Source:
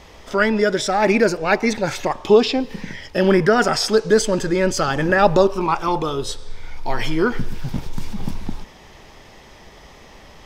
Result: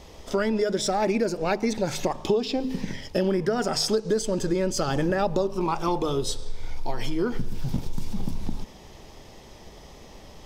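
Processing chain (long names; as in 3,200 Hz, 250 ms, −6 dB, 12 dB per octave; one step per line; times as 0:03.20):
parametric band 1,700 Hz −9 dB 1.8 octaves
in parallel at −10 dB: dead-zone distortion −38 dBFS
on the sum: hum removal 51.87 Hz, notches 5
downward compressor 6 to 1, threshold −21 dBFS, peak gain reduction 13.5 dB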